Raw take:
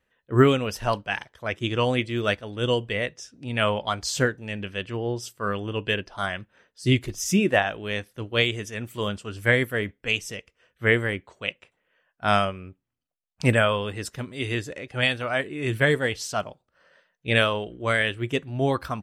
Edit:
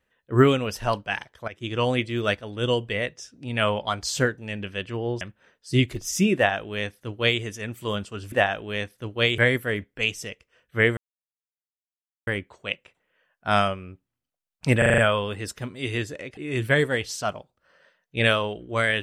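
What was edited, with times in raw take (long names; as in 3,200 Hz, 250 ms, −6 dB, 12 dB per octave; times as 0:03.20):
0:01.48–0:01.85: fade in, from −15 dB
0:05.21–0:06.34: remove
0:07.48–0:08.54: duplicate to 0:09.45
0:11.04: splice in silence 1.30 s
0:13.55: stutter 0.04 s, 6 plays
0:14.94–0:15.48: remove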